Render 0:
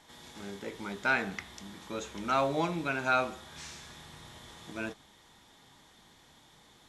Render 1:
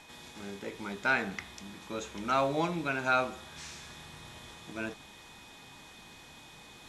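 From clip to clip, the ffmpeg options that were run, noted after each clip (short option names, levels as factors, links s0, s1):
-af "areverse,acompressor=mode=upward:threshold=0.00631:ratio=2.5,areverse,aeval=exprs='val(0)+0.00141*sin(2*PI*2500*n/s)':c=same"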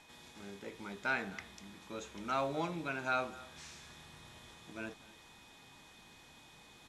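-filter_complex "[0:a]asplit=2[s0][s1];[s1]adelay=250.7,volume=0.1,highshelf=f=4000:g=-5.64[s2];[s0][s2]amix=inputs=2:normalize=0,volume=0.473"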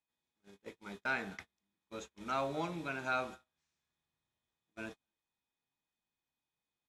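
-af "agate=range=0.02:threshold=0.00562:ratio=16:detection=peak,volume=0.891"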